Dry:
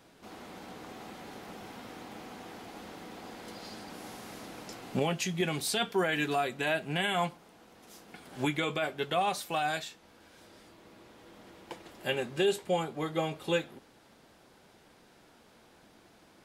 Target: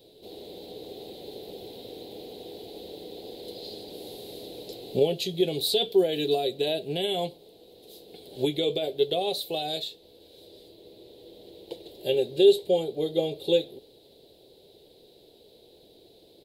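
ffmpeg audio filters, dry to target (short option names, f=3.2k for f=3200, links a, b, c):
-af "firequalizer=gain_entry='entry(120,0);entry(220,-6);entry(420,11);entry(1200,-26);entry(3900,12);entry(5700,-9);entry(14000,7)':delay=0.05:min_phase=1,volume=1.5dB"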